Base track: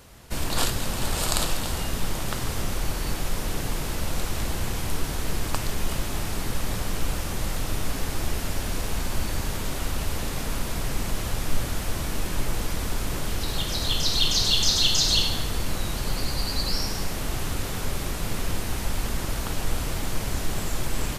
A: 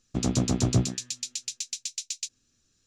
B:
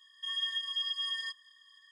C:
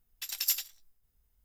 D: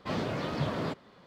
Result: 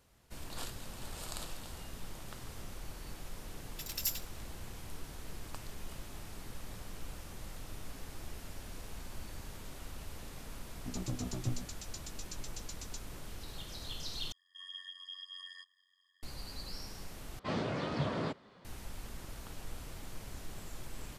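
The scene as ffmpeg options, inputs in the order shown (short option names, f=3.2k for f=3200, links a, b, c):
-filter_complex "[0:a]volume=-18dB[a];[3:a]acontrast=65[b];[1:a]asplit=2[c][d];[d]adelay=3.1,afreqshift=-2.9[e];[c][e]amix=inputs=2:normalize=1[f];[2:a]tremolo=f=91:d=0.75[g];[4:a]aresample=22050,aresample=44100[h];[a]asplit=3[i][j][k];[i]atrim=end=14.324[l];[g]atrim=end=1.91,asetpts=PTS-STARTPTS,volume=-10dB[m];[j]atrim=start=16.226:end=17.394[n];[h]atrim=end=1.26,asetpts=PTS-STARTPTS,volume=-3dB[o];[k]atrim=start=18.646[p];[b]atrim=end=1.44,asetpts=PTS-STARTPTS,volume=-12.5dB,afade=t=in:d=0.004:c=hsin,afade=t=out:st=1.436:d=0.004:c=hsin,adelay=157437S[q];[f]atrim=end=2.86,asetpts=PTS-STARTPTS,volume=-11.5dB,afade=t=in:d=0.004:c=hsin,afade=t=out:st=2.856:d=0.004:c=hsin,adelay=10710[r];[l][m]acrossfade=d=0.004:c1=hsin:c2=hsin[s];[s][n]acrossfade=d=0.004:c1=hsin:c2=hsin[t];[t][o]acrossfade=d=0.004:c1=hsin:c2=hsin[u];[u][p]acrossfade=d=0.004:c1=hsin:c2=hsin[v];[v][q][r]amix=inputs=3:normalize=0"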